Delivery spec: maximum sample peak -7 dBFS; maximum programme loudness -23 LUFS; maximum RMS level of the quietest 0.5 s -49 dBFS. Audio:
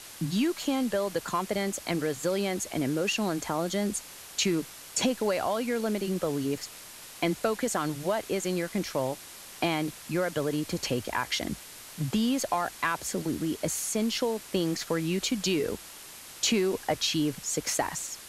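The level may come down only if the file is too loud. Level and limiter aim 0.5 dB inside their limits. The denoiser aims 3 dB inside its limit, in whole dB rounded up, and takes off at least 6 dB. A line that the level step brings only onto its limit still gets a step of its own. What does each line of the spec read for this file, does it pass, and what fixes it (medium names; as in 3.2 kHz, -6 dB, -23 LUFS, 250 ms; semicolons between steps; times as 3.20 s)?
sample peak -13.0 dBFS: pass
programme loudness -29.5 LUFS: pass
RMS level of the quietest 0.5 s -46 dBFS: fail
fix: noise reduction 6 dB, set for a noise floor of -46 dBFS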